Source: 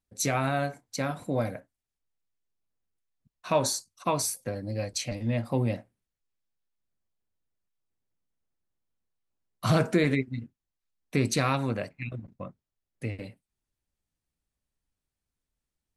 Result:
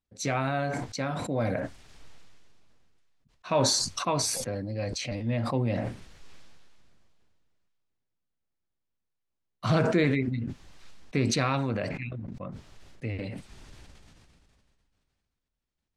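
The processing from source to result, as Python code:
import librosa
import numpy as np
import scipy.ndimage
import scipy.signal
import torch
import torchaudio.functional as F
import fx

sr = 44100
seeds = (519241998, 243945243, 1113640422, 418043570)

y = scipy.signal.sosfilt(scipy.signal.butter(2, 5400.0, 'lowpass', fs=sr, output='sos'), x)
y = fx.sustainer(y, sr, db_per_s=23.0)
y = F.gain(torch.from_numpy(y), -1.5).numpy()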